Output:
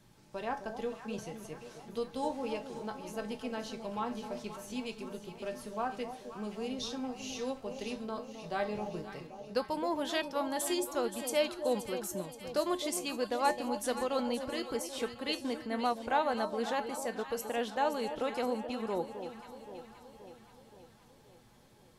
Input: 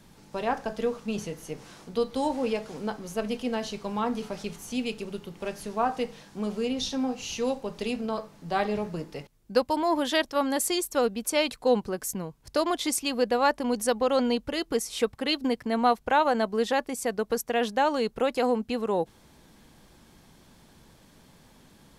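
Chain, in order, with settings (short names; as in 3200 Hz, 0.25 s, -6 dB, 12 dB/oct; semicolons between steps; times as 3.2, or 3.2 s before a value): resonator 120 Hz, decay 0.24 s, harmonics odd, mix 70%; echo with dull and thin repeats by turns 0.262 s, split 890 Hz, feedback 75%, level -8.5 dB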